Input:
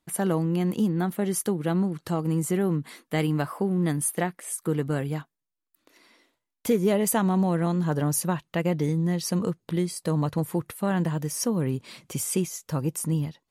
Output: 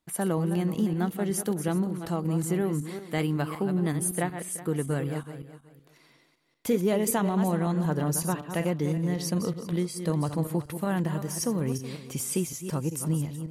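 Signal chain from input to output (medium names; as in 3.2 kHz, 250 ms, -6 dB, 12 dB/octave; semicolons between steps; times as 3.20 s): backward echo that repeats 187 ms, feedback 44%, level -9 dB; trim -2.5 dB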